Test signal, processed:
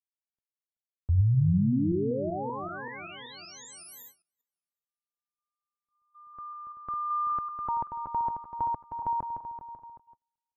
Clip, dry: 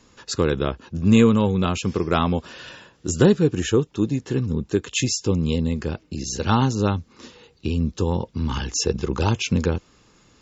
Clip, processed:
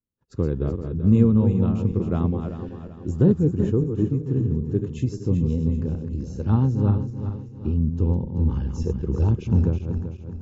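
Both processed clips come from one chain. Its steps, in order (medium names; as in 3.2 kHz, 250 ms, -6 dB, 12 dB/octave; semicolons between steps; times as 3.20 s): backward echo that repeats 192 ms, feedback 63%, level -7 dB; FFT filter 120 Hz 0 dB, 370 Hz -7 dB, 3.4 kHz -27 dB; gate -52 dBFS, range -34 dB; trim +2 dB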